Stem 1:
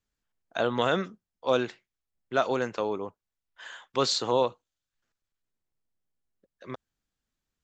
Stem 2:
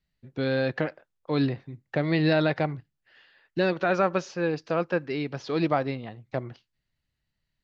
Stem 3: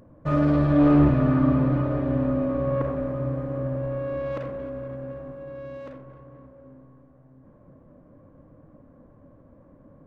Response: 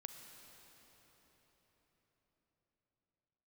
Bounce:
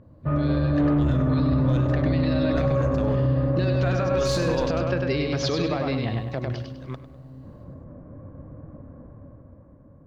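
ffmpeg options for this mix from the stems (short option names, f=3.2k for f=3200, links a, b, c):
-filter_complex "[0:a]aeval=exprs='if(lt(val(0),0),0.447*val(0),val(0))':c=same,adelay=200,volume=-7.5dB,asplit=2[a][b];[b]volume=-13.5dB[c];[1:a]acompressor=threshold=-32dB:ratio=12,adynamicequalizer=threshold=0.00178:dfrequency=2900:dqfactor=0.7:tfrequency=2900:tqfactor=0.7:attack=5:release=100:ratio=0.375:range=3.5:mode=boostabove:tftype=highshelf,volume=0dB,asplit=3[d][e][f];[e]volume=-4.5dB[g];[2:a]lowpass=2.3k,volume=-3dB[h];[f]apad=whole_len=345691[i];[a][i]sidechaincompress=threshold=-35dB:ratio=8:attack=11:release=409[j];[c][g]amix=inputs=2:normalize=0,aecho=0:1:100|200|300|400|500:1|0.34|0.116|0.0393|0.0134[k];[j][d][h][k]amix=inputs=4:normalize=0,equalizer=f=82:w=0.89:g=9.5,dynaudnorm=f=230:g=9:m=9.5dB,alimiter=limit=-14.5dB:level=0:latency=1:release=49"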